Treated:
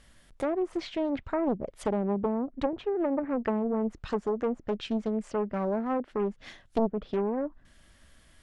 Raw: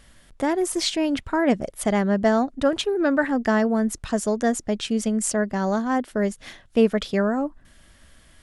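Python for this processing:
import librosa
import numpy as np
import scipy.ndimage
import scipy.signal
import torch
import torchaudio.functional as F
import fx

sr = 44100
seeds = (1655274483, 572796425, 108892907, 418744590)

y = fx.env_lowpass_down(x, sr, base_hz=380.0, full_db=-15.5)
y = fx.doppler_dist(y, sr, depth_ms=0.73)
y = F.gain(torch.from_numpy(y), -5.5).numpy()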